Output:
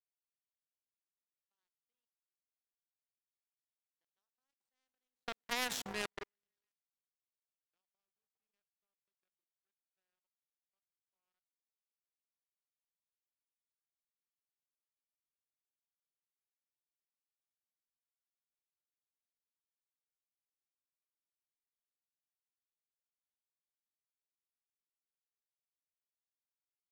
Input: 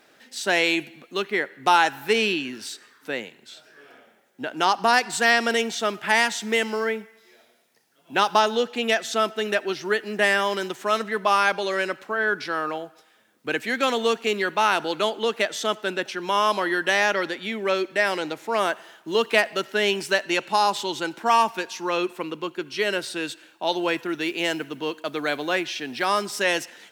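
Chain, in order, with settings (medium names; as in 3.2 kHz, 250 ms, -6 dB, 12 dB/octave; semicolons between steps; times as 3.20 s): Doppler pass-by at 5.70 s, 33 m/s, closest 2.5 m; repeats whose band climbs or falls 135 ms, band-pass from 320 Hz, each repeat 0.7 oct, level -8.5 dB; level held to a coarse grid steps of 19 dB; power-law waveshaper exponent 3; trim +10.5 dB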